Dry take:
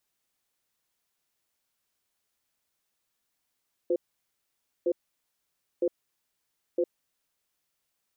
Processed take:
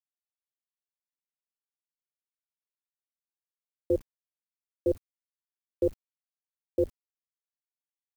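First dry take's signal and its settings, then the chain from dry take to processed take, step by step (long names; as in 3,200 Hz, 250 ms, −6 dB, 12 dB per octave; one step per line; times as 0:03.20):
tone pair in a cadence 354 Hz, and 512 Hz, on 0.06 s, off 0.90 s, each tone −25 dBFS 3.36 s
sub-octave generator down 2 octaves, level −5 dB
in parallel at +0.5 dB: brickwall limiter −29 dBFS
on the sum: bit reduction 9 bits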